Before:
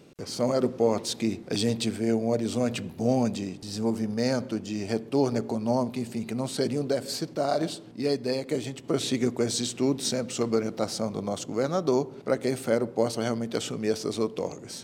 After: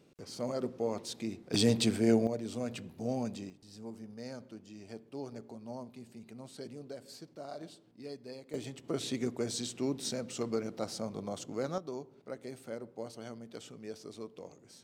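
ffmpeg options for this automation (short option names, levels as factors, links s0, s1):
-af "asetnsamples=n=441:p=0,asendcmd='1.54 volume volume -0.5dB;2.27 volume volume -10.5dB;3.5 volume volume -18dB;8.54 volume volume -8.5dB;11.78 volume volume -17dB',volume=0.299"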